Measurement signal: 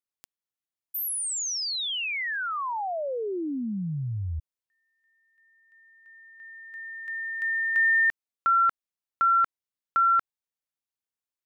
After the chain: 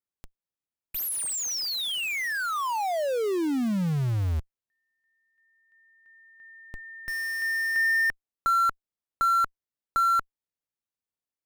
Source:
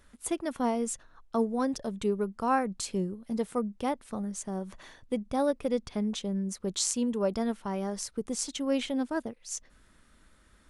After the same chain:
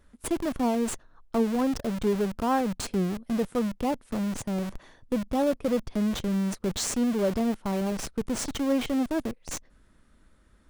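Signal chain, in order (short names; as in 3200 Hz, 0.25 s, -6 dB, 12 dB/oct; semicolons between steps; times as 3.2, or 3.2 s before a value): tilt shelf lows +4 dB; in parallel at -3.5 dB: Schmitt trigger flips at -38 dBFS; on the sum: gain -2 dB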